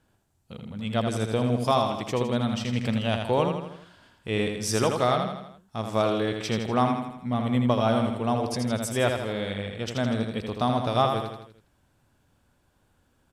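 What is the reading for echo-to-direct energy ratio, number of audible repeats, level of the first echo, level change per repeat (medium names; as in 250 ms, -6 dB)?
-4.0 dB, 5, -5.5 dB, -5.5 dB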